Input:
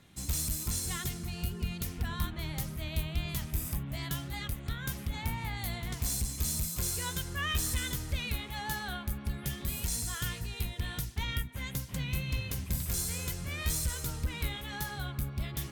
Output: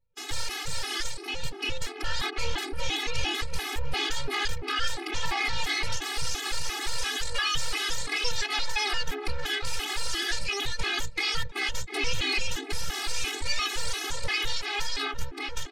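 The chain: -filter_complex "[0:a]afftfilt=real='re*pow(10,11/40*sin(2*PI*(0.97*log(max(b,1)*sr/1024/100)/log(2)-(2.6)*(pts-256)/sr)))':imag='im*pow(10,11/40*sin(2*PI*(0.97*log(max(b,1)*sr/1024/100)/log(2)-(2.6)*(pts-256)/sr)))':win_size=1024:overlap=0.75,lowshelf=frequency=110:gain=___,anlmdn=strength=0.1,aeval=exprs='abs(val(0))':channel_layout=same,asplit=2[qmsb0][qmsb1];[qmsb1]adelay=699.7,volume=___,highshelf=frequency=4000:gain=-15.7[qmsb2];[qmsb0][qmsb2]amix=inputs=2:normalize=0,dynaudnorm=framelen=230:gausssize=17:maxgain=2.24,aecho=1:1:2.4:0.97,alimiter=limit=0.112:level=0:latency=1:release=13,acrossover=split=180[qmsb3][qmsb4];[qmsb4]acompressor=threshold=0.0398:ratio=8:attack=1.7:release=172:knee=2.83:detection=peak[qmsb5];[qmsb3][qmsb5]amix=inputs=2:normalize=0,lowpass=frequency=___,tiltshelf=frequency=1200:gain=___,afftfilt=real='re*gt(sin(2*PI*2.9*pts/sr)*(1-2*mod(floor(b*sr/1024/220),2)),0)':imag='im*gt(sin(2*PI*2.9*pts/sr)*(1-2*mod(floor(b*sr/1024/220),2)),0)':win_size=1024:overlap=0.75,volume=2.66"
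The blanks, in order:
-9, 0.141, 5000, -5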